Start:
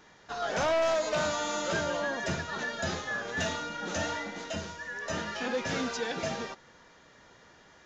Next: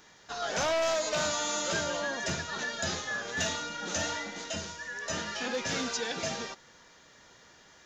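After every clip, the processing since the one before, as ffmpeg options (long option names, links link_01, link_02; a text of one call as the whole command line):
ffmpeg -i in.wav -af "highshelf=frequency=3500:gain=11,volume=-2.5dB" out.wav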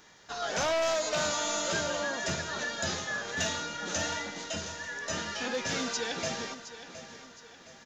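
ffmpeg -i in.wav -af "aecho=1:1:716|1432|2148|2864:0.224|0.0963|0.0414|0.0178" out.wav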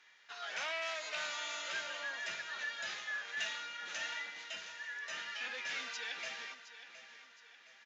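ffmpeg -i in.wav -af "bandpass=frequency=2300:width_type=q:width=1.8:csg=0,volume=-1dB" out.wav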